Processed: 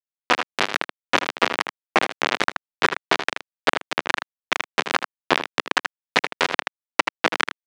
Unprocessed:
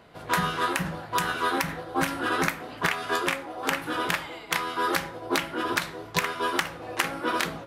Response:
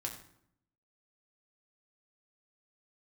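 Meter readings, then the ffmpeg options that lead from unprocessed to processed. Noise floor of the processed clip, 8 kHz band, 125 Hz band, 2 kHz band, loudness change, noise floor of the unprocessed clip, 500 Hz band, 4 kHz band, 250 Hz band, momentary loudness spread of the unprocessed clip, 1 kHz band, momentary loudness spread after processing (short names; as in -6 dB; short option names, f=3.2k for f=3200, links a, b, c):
under -85 dBFS, -0.5 dB, -7.0 dB, +5.0 dB, +4.0 dB, -43 dBFS, +3.5 dB, +6.0 dB, -1.0 dB, 4 LU, +3.0 dB, 5 LU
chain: -af "adynamicequalizer=threshold=0.0141:dfrequency=2000:dqfactor=0.96:tfrequency=2000:tqfactor=0.96:attack=5:release=100:ratio=0.375:range=1.5:mode=cutabove:tftype=bell,acompressor=threshold=-28dB:ratio=16,acrusher=bits=3:mix=0:aa=0.000001,highpass=260,lowpass=3.1k,aecho=1:1:79:0.168,alimiter=level_in=24.5dB:limit=-1dB:release=50:level=0:latency=1,volume=-1dB"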